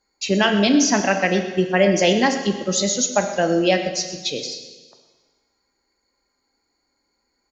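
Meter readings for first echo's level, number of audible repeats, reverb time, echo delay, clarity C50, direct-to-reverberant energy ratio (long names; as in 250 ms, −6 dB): −16.0 dB, 1, 1.4 s, 124 ms, 7.5 dB, 5.5 dB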